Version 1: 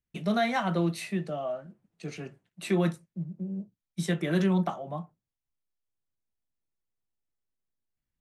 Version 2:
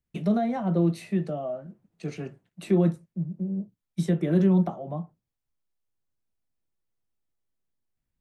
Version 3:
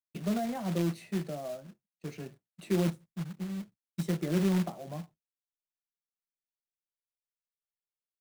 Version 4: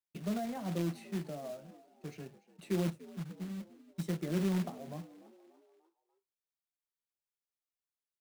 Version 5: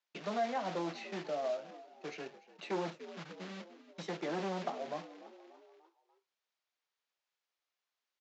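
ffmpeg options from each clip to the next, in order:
-filter_complex "[0:a]tiltshelf=f=1200:g=3,acrossover=split=680[s0][s1];[s1]acompressor=threshold=0.00562:ratio=5[s2];[s0][s2]amix=inputs=2:normalize=0,volume=1.26"
-af "agate=range=0.0224:threshold=0.00891:ratio=3:detection=peak,acrusher=bits=3:mode=log:mix=0:aa=0.000001,volume=0.447"
-filter_complex "[0:a]asplit=5[s0][s1][s2][s3][s4];[s1]adelay=293,afreqshift=56,volume=0.106[s5];[s2]adelay=586,afreqshift=112,volume=0.0543[s6];[s3]adelay=879,afreqshift=168,volume=0.0275[s7];[s4]adelay=1172,afreqshift=224,volume=0.0141[s8];[s0][s5][s6][s7][s8]amix=inputs=5:normalize=0,volume=0.596"
-af "aresample=16000,asoftclip=type=tanh:threshold=0.0266,aresample=44100,highpass=510,lowpass=4800,volume=3.16"

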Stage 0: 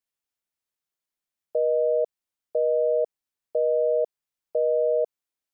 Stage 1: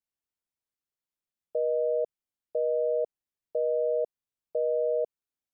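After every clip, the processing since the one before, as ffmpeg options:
-af "lowshelf=f=440:g=7.5,volume=0.422"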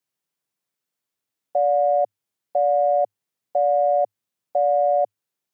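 -af "afreqshift=100,acontrast=89,volume=1.12"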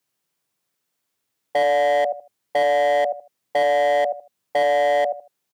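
-af "aecho=1:1:77|154|231:0.316|0.0664|0.0139,asoftclip=type=hard:threshold=0.0708,volume=2.24"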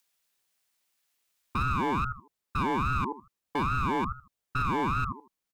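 -filter_complex "[0:a]acrossover=split=1100[s0][s1];[s1]acompressor=mode=upward:threshold=0.00178:ratio=2.5[s2];[s0][s2]amix=inputs=2:normalize=0,aeval=exprs='val(0)*sin(2*PI*490*n/s+490*0.45/2.4*sin(2*PI*2.4*n/s))':c=same,volume=0.473"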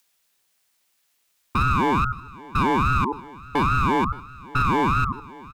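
-af "aecho=1:1:573|1146:0.0891|0.0223,volume=2.37"

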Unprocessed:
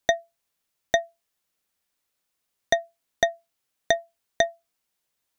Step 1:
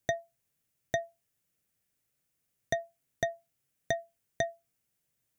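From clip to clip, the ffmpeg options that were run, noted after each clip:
-af "equalizer=f=125:t=o:w=1:g=12,equalizer=f=1000:t=o:w=1:g=-8,equalizer=f=4000:t=o:w=1:g=-7,alimiter=limit=0.168:level=0:latency=1:release=89"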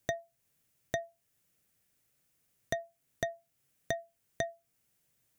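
-af "acompressor=threshold=0.00316:ratio=1.5,volume=1.78"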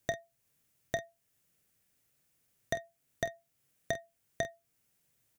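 -af "aecho=1:1:29|48:0.188|0.224"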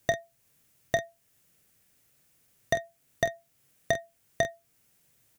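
-af "asoftclip=type=hard:threshold=0.075,volume=2.51"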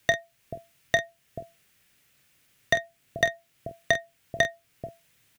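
-filter_complex "[0:a]acrossover=split=650|3400[s0][s1][s2];[s0]aecho=1:1:435:0.562[s3];[s1]crystalizer=i=8.5:c=0[s4];[s3][s4][s2]amix=inputs=3:normalize=0"

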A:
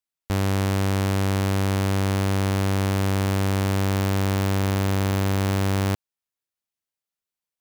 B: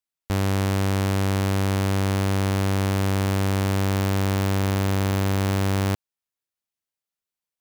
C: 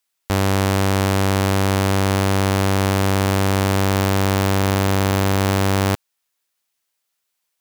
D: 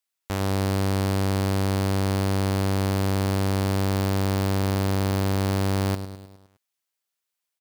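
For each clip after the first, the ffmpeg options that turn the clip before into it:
-af anull
-filter_complex "[0:a]asplit=2[s0][s1];[s1]highpass=f=720:p=1,volume=2.82,asoftclip=type=tanh:threshold=0.141[s2];[s0][s2]amix=inputs=2:normalize=0,lowpass=f=1700:p=1,volume=0.501,crystalizer=i=4:c=0,volume=2.66"
-af "aecho=1:1:103|206|309|412|515|618:0.282|0.155|0.0853|0.0469|0.0258|0.0142,volume=0.376"

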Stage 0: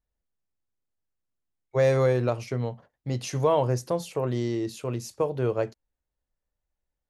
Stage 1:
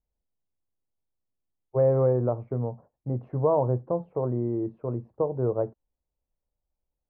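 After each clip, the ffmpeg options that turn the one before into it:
-af "lowpass=f=1000:w=0.5412,lowpass=f=1000:w=1.3066"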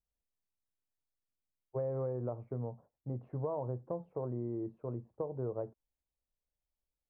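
-af "acompressor=threshold=0.0631:ratio=6,volume=0.376"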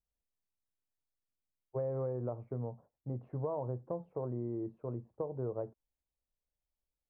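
-af anull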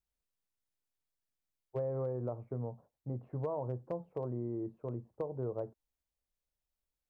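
-af "asoftclip=type=hard:threshold=0.0422"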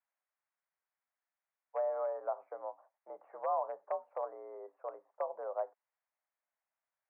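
-af "highpass=f=570:t=q:w=0.5412,highpass=f=570:t=q:w=1.307,lowpass=f=2100:t=q:w=0.5176,lowpass=f=2100:t=q:w=0.7071,lowpass=f=2100:t=q:w=1.932,afreqshift=66,volume=2.24"

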